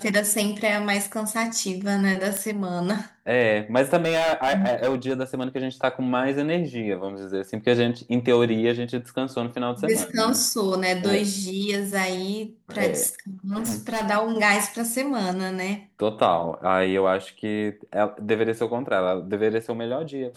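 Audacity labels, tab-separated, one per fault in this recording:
2.370000	2.370000	click −9 dBFS
3.980000	5.580000	clipping −17.5 dBFS
13.510000	14.070000	clipping −23 dBFS

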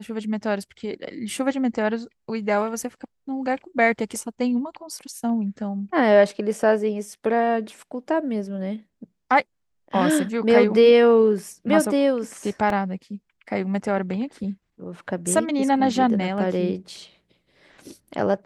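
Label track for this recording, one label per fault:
12.700000	12.700000	drop-out 2.1 ms

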